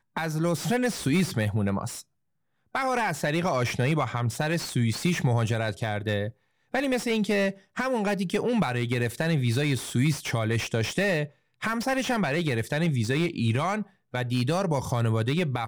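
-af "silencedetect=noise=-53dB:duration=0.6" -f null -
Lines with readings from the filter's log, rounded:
silence_start: 2.02
silence_end: 2.74 | silence_duration: 0.72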